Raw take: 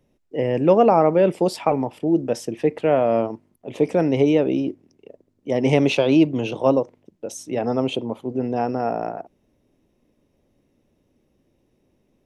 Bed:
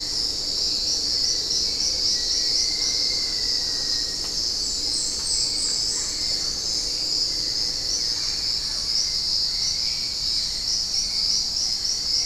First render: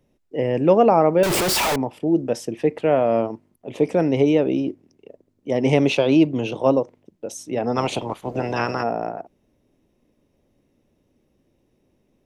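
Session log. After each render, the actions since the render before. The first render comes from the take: 1.23–1.76 s: one-bit comparator; 7.75–8.82 s: spectral peaks clipped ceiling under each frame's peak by 23 dB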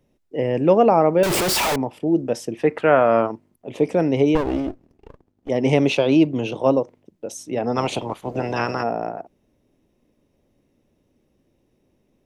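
2.63–3.32 s: peaking EQ 1.4 kHz +13.5 dB 1.1 oct; 4.35–5.49 s: sliding maximum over 33 samples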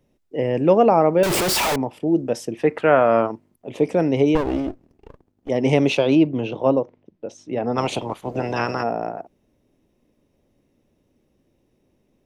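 6.15–7.78 s: distance through air 170 m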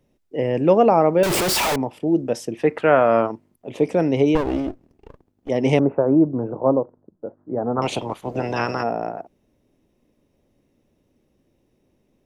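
5.79–7.82 s: steep low-pass 1.5 kHz 48 dB/octave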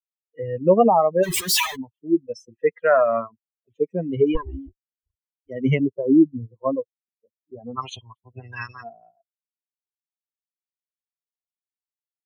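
expander on every frequency bin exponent 3; in parallel at -1 dB: peak limiter -15.5 dBFS, peak gain reduction 8 dB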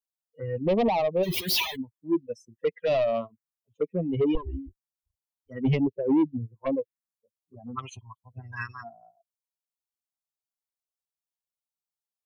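saturation -17.5 dBFS, distortion -9 dB; touch-sensitive phaser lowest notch 320 Hz, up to 1.5 kHz, full sweep at -22.5 dBFS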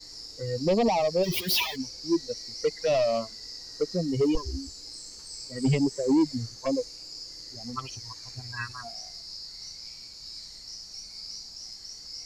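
add bed -18 dB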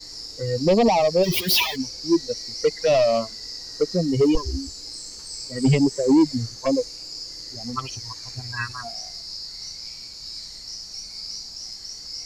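trim +6 dB

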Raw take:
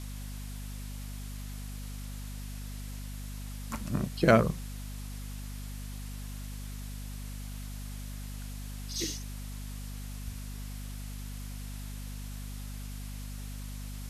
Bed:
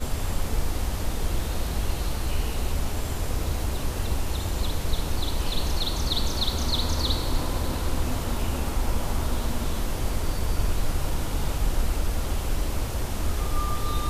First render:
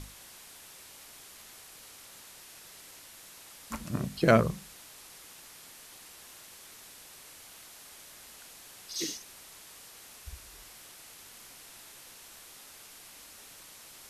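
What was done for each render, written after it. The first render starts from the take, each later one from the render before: hum notches 50/100/150/200/250 Hz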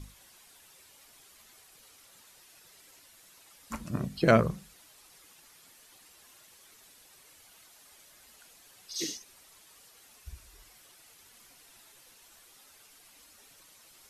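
noise reduction 9 dB, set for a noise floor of -51 dBFS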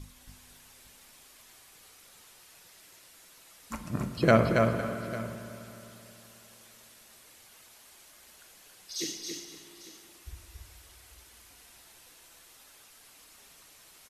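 multi-tap echo 277/506/849 ms -4.5/-16.5/-17 dB; spring tank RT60 3.3 s, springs 32/52 ms, chirp 35 ms, DRR 7 dB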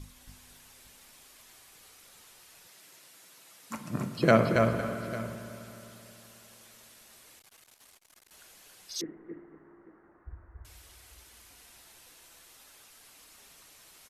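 2.67–4.56 s: high-pass 110 Hz 24 dB/octave; 7.39–8.31 s: transformer saturation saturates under 1.7 kHz; 9.01–10.65 s: steep low-pass 1.7 kHz 48 dB/octave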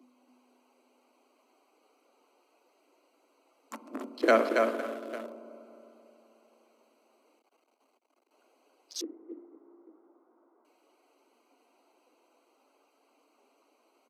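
local Wiener filter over 25 samples; steep high-pass 240 Hz 96 dB/octave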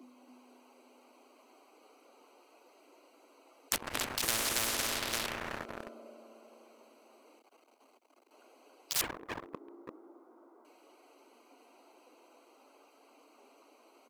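waveshaping leveller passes 3; spectrum-flattening compressor 10:1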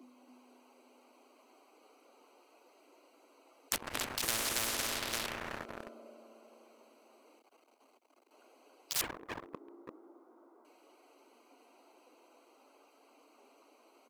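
trim -2 dB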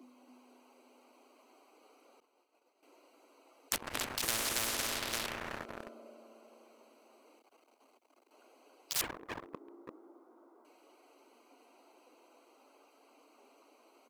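2.20–2.83 s: expander -57 dBFS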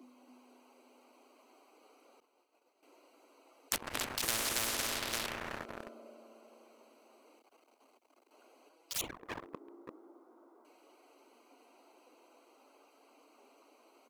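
8.69–9.23 s: touch-sensitive flanger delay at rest 6.8 ms, full sweep at -31 dBFS

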